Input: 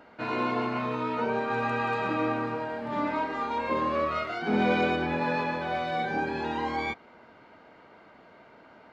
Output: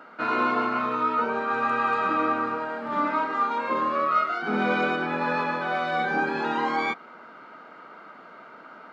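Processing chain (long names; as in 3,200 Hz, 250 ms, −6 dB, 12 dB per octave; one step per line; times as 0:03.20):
high-pass filter 160 Hz 24 dB per octave
parametric band 1,300 Hz +13.5 dB 0.38 octaves
speech leveller 2 s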